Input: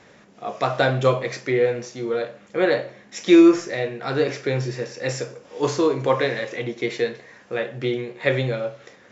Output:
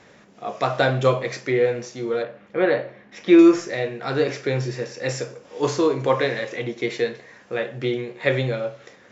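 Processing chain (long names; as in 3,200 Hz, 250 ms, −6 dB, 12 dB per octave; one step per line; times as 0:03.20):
0:02.23–0:03.39: low-pass filter 2,900 Hz 12 dB per octave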